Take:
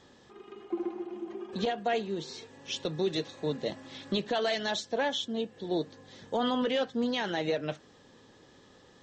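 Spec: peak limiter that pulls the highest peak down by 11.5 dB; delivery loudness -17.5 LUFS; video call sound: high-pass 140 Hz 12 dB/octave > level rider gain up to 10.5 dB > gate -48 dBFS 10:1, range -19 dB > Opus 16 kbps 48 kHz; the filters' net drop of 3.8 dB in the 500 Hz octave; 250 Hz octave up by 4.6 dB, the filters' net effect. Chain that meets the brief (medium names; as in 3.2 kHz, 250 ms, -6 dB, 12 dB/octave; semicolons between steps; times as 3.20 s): peaking EQ 250 Hz +8 dB; peaking EQ 500 Hz -7.5 dB; peak limiter -28 dBFS; high-pass 140 Hz 12 dB/octave; level rider gain up to 10.5 dB; gate -48 dBFS 10:1, range -19 dB; trim +20.5 dB; Opus 16 kbps 48 kHz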